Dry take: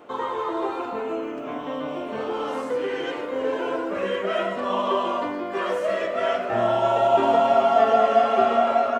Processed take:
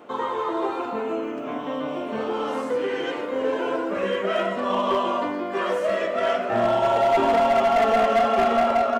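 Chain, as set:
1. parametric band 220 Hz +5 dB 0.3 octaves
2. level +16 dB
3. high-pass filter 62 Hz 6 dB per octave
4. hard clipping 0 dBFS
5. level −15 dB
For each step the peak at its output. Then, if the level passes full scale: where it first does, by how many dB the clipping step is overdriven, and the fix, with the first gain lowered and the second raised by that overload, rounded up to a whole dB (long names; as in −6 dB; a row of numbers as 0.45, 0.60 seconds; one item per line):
−6.5, +9.5, +9.5, 0.0, −15.0 dBFS
step 2, 9.5 dB
step 2 +6 dB, step 5 −5 dB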